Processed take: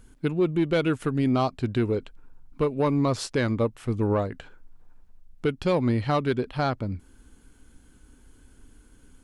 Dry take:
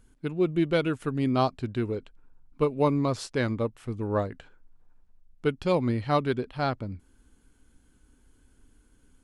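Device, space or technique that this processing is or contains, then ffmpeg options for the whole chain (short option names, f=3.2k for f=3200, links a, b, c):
soft clipper into limiter: -af "asoftclip=type=tanh:threshold=-15dB,alimiter=limit=-22.5dB:level=0:latency=1:release=337,volume=7dB"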